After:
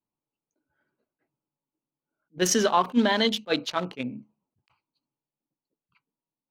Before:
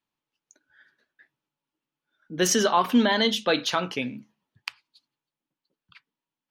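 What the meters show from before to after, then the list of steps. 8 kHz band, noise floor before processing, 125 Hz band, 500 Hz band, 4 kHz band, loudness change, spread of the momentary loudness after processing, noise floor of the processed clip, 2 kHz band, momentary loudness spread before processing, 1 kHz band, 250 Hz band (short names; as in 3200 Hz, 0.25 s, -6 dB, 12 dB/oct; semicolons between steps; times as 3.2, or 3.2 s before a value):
-1.5 dB, under -85 dBFS, -1.0 dB, -1.0 dB, -2.5 dB, -1.0 dB, 12 LU, under -85 dBFS, -2.5 dB, 18 LU, -1.0 dB, -1.5 dB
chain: Wiener smoothing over 25 samples; attack slew limiter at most 460 dB/s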